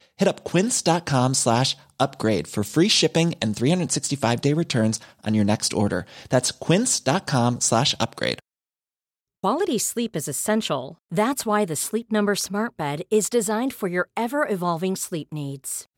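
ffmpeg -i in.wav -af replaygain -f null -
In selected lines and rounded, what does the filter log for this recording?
track_gain = +3.0 dB
track_peak = 0.393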